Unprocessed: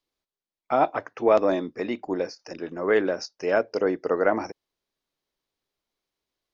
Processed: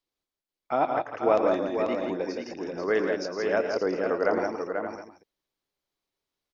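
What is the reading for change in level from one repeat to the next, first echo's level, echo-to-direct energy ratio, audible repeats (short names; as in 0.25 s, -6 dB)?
no steady repeat, -13.0 dB, -1.5 dB, 5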